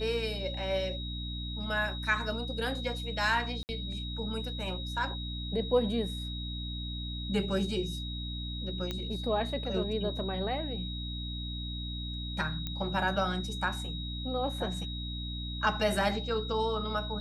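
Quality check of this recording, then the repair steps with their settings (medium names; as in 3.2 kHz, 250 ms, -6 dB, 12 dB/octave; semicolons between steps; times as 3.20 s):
hum 60 Hz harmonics 5 -38 dBFS
whine 3.8 kHz -40 dBFS
3.63–3.69 s: dropout 59 ms
8.91 s: pop -20 dBFS
12.67 s: pop -21 dBFS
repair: de-click; band-stop 3.8 kHz, Q 30; de-hum 60 Hz, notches 5; interpolate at 3.63 s, 59 ms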